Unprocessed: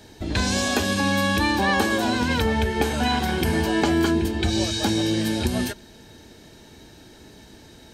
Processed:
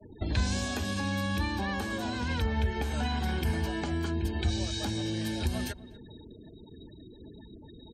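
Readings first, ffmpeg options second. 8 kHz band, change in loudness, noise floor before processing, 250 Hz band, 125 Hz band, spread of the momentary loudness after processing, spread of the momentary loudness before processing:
-11.0 dB, -9.5 dB, -48 dBFS, -10.5 dB, -4.0 dB, 19 LU, 4 LU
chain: -filter_complex "[0:a]afftfilt=real='re*gte(hypot(re,im),0.0112)':imag='im*gte(hypot(re,im),0.0112)':win_size=1024:overlap=0.75,adynamicequalizer=threshold=0.0126:dfrequency=130:dqfactor=0.92:tfrequency=130:tqfactor=0.92:attack=5:release=100:ratio=0.375:range=2.5:mode=cutabove:tftype=bell,acrossover=split=230[a][b];[b]acompressor=threshold=-34dB:ratio=5[c];[a][c]amix=inputs=2:normalize=0,acrossover=split=140|490|3300[d][e][f][g];[e]alimiter=level_in=7.5dB:limit=-24dB:level=0:latency=1:release=329,volume=-7.5dB[h];[d][h][f][g]amix=inputs=4:normalize=0,asplit=2[i][j];[j]adelay=244,lowpass=f=990:p=1,volume=-16.5dB,asplit=2[k][l];[l]adelay=244,lowpass=f=990:p=1,volume=0.15[m];[i][k][m]amix=inputs=3:normalize=0"

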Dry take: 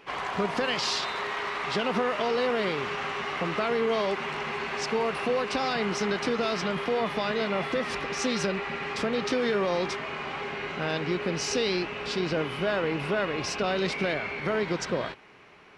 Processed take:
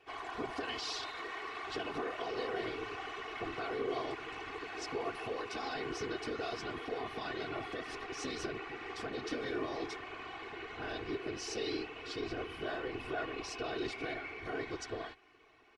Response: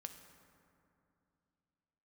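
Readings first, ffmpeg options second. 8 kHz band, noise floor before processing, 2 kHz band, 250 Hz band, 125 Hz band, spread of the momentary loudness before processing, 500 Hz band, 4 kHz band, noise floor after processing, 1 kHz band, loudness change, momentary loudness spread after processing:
-11.5 dB, -37 dBFS, -11.0 dB, -11.0 dB, -14.0 dB, 5 LU, -12.0 dB, -11.0 dB, -49 dBFS, -10.5 dB, -11.5 dB, 5 LU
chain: -af "afftfilt=real='hypot(re,im)*cos(2*PI*random(0))':imag='hypot(re,im)*sin(2*PI*random(1))':win_size=512:overlap=0.75,aecho=1:1:2.7:0.73,volume=-7dB"

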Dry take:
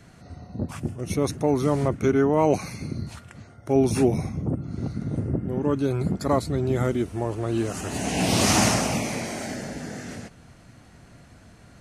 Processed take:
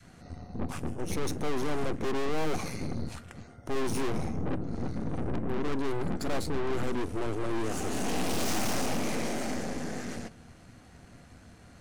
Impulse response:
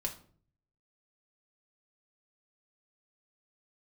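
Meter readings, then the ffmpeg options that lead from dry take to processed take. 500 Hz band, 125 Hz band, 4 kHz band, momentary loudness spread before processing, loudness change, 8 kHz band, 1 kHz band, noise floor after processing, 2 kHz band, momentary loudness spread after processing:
-8.5 dB, -10.0 dB, -8.0 dB, 15 LU, -8.5 dB, -9.0 dB, -7.0 dB, -53 dBFS, -5.5 dB, 13 LU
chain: -filter_complex "[0:a]adynamicequalizer=threshold=0.0178:dfrequency=400:dqfactor=0.82:tfrequency=400:tqfactor=0.82:attack=5:release=100:ratio=0.375:range=3.5:mode=boostabove:tftype=bell,aeval=exprs='(tanh(39.8*val(0)+0.75)-tanh(0.75))/39.8':c=same,asplit=2[a][b];[1:a]atrim=start_sample=2205,asetrate=61740,aresample=44100[c];[b][c]afir=irnorm=-1:irlink=0,volume=-8.5dB[d];[a][d]amix=inputs=2:normalize=0"

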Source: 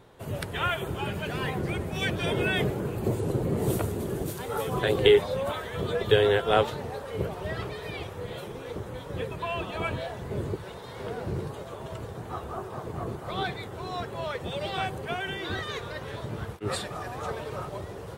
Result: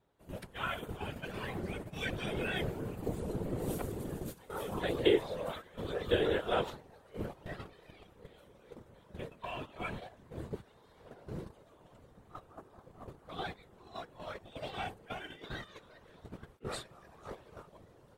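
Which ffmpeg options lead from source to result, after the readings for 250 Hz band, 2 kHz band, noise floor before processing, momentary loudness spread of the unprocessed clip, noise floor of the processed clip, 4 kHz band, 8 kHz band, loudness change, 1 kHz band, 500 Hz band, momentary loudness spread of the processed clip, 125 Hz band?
-7.0 dB, -9.5 dB, -41 dBFS, 14 LU, -62 dBFS, -10.0 dB, -10.0 dB, -8.0 dB, -10.0 dB, -9.5 dB, 23 LU, -11.5 dB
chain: -af "afftfilt=real='hypot(re,im)*cos(2*PI*random(0))':imag='hypot(re,im)*sin(2*PI*random(1))':win_size=512:overlap=0.75,agate=range=-12dB:threshold=-38dB:ratio=16:detection=peak,volume=-3dB"

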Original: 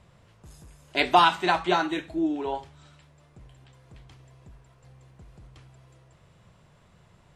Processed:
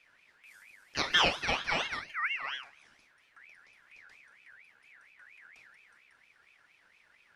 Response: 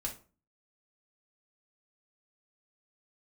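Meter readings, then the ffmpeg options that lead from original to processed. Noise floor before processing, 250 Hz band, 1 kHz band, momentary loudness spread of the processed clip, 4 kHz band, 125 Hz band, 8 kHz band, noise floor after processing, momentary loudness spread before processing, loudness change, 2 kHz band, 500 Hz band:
-59 dBFS, -17.0 dB, -12.5 dB, 13 LU, -0.5 dB, -8.0 dB, +3.0 dB, -67 dBFS, 12 LU, -6.0 dB, -2.0 dB, -11.5 dB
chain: -filter_complex "[0:a]asplit=2[a][b];[1:a]atrim=start_sample=2205,adelay=40[c];[b][c]afir=irnorm=-1:irlink=0,volume=-8.5dB[d];[a][d]amix=inputs=2:normalize=0,aeval=exprs='val(0)*sin(2*PI*2000*n/s+2000*0.25/4.3*sin(2*PI*4.3*n/s))':c=same,volume=-5.5dB"

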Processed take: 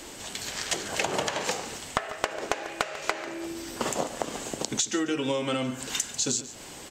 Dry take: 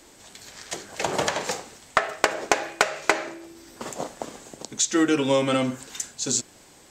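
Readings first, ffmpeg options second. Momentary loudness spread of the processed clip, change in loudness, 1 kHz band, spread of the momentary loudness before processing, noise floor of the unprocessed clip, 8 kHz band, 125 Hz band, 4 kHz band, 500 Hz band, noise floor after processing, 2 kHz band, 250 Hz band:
8 LU, -5.0 dB, -4.5 dB, 18 LU, -52 dBFS, -2.0 dB, -3.0 dB, -1.0 dB, -5.0 dB, -43 dBFS, -5.5 dB, -5.0 dB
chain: -filter_complex "[0:a]equalizer=f=2.9k:w=4.6:g=4.5,acompressor=threshold=-33dB:ratio=16,asplit=2[a][b];[b]aecho=0:1:144:0.178[c];[a][c]amix=inputs=2:normalize=0,volume=8.5dB"

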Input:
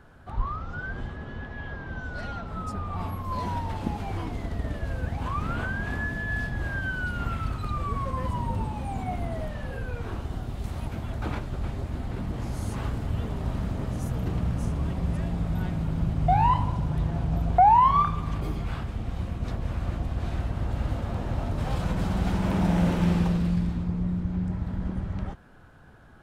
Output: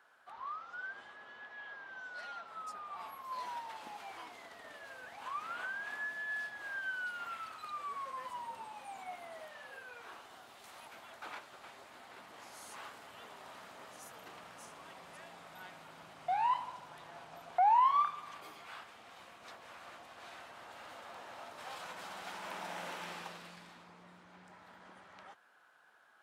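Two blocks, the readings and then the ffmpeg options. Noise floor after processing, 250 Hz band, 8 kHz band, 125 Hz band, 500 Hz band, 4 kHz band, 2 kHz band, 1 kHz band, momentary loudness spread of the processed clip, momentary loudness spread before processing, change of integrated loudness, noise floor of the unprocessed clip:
-59 dBFS, -31.0 dB, -6.0 dB, under -35 dB, -14.0 dB, -6.0 dB, -6.5 dB, -9.0 dB, 16 LU, 11 LU, -11.0 dB, -39 dBFS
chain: -af "highpass=900,volume=-6dB"

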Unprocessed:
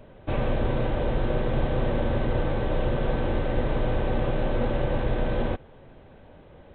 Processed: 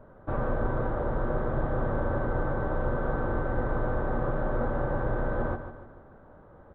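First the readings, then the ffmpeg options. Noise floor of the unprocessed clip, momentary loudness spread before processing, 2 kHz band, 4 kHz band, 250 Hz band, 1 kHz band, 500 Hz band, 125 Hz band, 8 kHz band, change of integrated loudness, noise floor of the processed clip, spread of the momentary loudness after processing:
-50 dBFS, 2 LU, -0.5 dB, under -20 dB, -3.5 dB, 0.0 dB, -2.5 dB, -3.5 dB, n/a, -3.0 dB, -53 dBFS, 3 LU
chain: -af "highshelf=f=1.9k:t=q:w=3:g=-11.5,aecho=1:1:147|294|441|588|735:0.316|0.139|0.0612|0.0269|0.0119,volume=-4dB"

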